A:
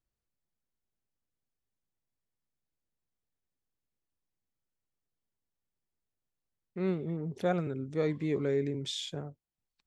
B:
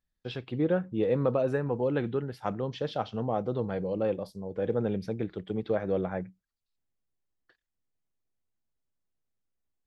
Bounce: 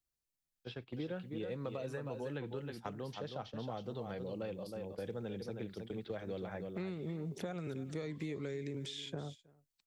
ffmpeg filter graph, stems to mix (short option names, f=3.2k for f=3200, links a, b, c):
-filter_complex "[0:a]acompressor=threshold=-32dB:ratio=6,volume=1.5dB,asplit=2[a][b];[b]volume=-20dB[c];[1:a]adelay=400,volume=-7.5dB,asplit=2[d][e];[e]volume=-7.5dB[f];[c][f]amix=inputs=2:normalize=0,aecho=0:1:316:1[g];[a][d][g]amix=inputs=3:normalize=0,agate=range=-9dB:threshold=-45dB:ratio=16:detection=peak,highshelf=f=2.8k:g=11,acrossover=split=150|2100[h][i][j];[h]acompressor=threshold=-49dB:ratio=4[k];[i]acompressor=threshold=-40dB:ratio=4[l];[j]acompressor=threshold=-55dB:ratio=4[m];[k][l][m]amix=inputs=3:normalize=0"